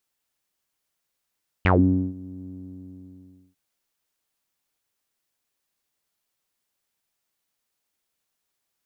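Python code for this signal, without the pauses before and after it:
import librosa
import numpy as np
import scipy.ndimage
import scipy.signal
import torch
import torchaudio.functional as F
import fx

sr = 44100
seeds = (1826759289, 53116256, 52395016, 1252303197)

y = fx.sub_voice(sr, note=42, wave='saw', cutoff_hz=260.0, q=7.3, env_oct=3.5, env_s=0.14, attack_ms=2.2, decay_s=0.48, sustain_db=-24.0, release_s=1.08, note_s=0.82, slope=12)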